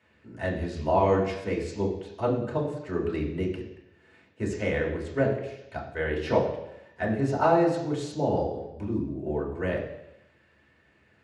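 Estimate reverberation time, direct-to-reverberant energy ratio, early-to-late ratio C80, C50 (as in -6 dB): 0.90 s, -3.0 dB, 8.5 dB, 6.0 dB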